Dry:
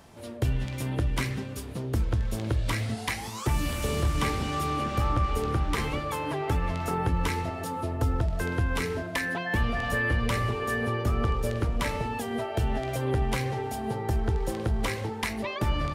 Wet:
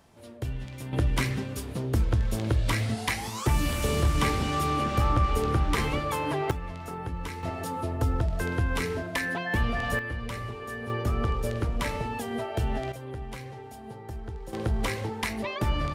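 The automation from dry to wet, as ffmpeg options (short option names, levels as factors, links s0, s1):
-af "asetnsamples=n=441:p=0,asendcmd='0.93 volume volume 2dB;6.51 volume volume -8dB;7.43 volume volume 0dB;9.99 volume volume -8dB;10.9 volume volume -1dB;12.92 volume volume -11dB;14.53 volume volume 0dB',volume=0.473"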